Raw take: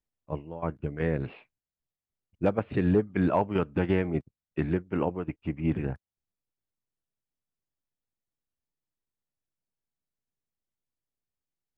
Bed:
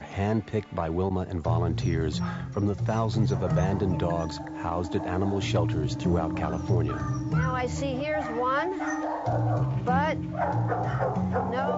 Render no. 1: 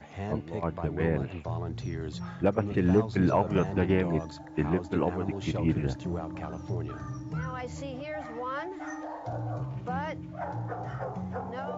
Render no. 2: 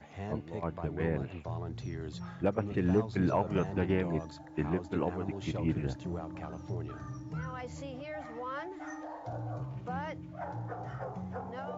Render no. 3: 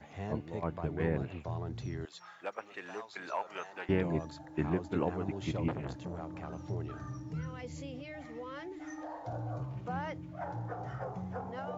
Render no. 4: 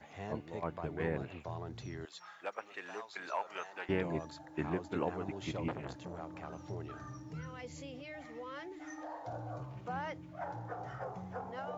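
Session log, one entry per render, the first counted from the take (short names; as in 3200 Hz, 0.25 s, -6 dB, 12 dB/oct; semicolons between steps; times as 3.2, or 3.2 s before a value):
add bed -8.5 dB
gain -4.5 dB
2.05–3.89 HPF 950 Hz; 5.68–6.48 core saturation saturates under 960 Hz; 7.32–8.98 band shelf 990 Hz -8 dB
low shelf 310 Hz -7.5 dB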